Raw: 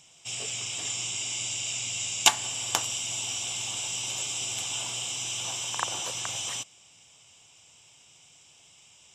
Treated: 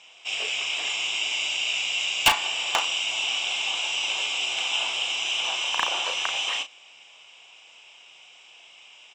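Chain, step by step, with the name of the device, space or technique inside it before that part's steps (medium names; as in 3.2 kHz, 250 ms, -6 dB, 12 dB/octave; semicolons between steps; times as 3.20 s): megaphone (band-pass 540–3300 Hz; peaking EQ 2.6 kHz +6 dB 0.48 oct; hard clipper -20 dBFS, distortion -8 dB; doubling 35 ms -8.5 dB); trim +8 dB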